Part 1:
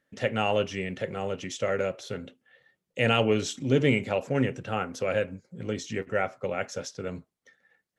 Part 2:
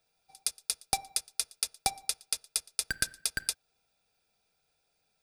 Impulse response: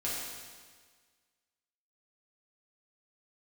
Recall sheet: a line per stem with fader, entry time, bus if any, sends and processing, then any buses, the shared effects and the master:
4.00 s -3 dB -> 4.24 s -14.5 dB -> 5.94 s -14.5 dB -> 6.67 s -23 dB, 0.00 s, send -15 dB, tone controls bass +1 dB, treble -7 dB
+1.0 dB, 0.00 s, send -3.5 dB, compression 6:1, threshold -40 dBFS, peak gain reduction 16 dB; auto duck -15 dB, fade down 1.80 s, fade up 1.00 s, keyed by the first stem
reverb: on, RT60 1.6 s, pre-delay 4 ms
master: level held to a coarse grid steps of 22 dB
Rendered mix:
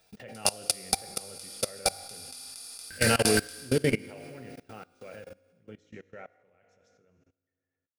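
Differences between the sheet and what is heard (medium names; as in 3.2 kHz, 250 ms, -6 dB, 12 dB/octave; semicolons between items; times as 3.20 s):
stem 2 +1.0 dB -> +12.5 dB; reverb return +7.0 dB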